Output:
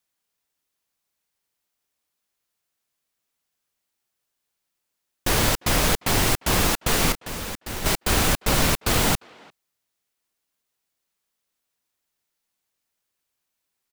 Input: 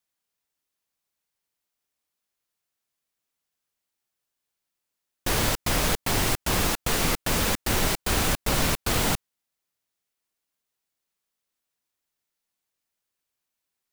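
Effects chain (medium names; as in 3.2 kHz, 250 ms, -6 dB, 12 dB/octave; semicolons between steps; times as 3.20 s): 7.12–7.86 s: gate -20 dBFS, range -11 dB; speakerphone echo 350 ms, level -24 dB; trim +3.5 dB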